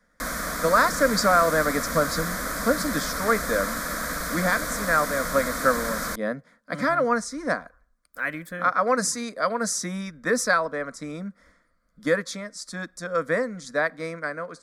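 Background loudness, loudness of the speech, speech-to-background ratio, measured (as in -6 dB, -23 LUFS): -29.0 LUFS, -25.5 LUFS, 3.5 dB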